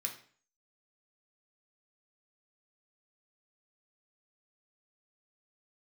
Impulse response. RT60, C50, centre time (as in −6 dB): 0.45 s, 9.5 dB, 15 ms